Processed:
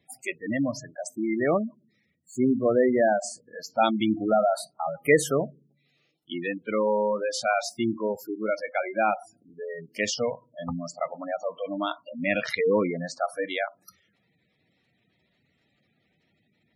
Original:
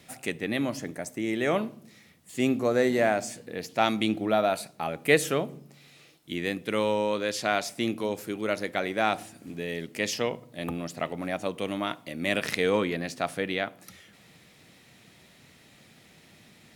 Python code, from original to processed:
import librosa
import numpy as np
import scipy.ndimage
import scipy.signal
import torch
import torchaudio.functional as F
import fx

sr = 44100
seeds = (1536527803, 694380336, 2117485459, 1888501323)

y = fx.noise_reduce_blind(x, sr, reduce_db=16)
y = fx.spec_gate(y, sr, threshold_db=-15, keep='strong')
y = y * 10.0 ** (3.0 / 20.0)